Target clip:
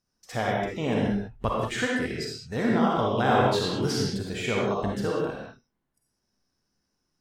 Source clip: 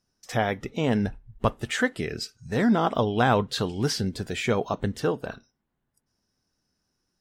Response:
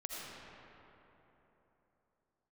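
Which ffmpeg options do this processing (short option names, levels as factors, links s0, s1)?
-filter_complex "[0:a]asettb=1/sr,asplit=3[s0][s1][s2];[s0]atrim=end=3.274[s3];[s1]atrim=start=3.27:end=3.92,asetpts=PTS-STARTPTS,afade=t=in:d=0.004:c=qsin,afade=t=out:st=0.646:d=0.004:c=qsin,asplit=2[s4][s5];[s5]adelay=22,volume=0.668[s6];[s4][s6]amix=inputs=2:normalize=0,atrim=end_sample=28665[s7];[s2]atrim=start=3.916[s8];[s3][s7]acrossfade=d=0.004:c1=hsin:c2=qsin[s9];[s9][s8]acrossfade=d=0.004:c1=qsin:c2=hsin[s10];[1:a]atrim=start_sample=2205,afade=t=out:st=0.41:d=0.01,atrim=end_sample=18522,asetrate=74970,aresample=44100[s11];[s10][s11]afir=irnorm=-1:irlink=0,volume=1.68"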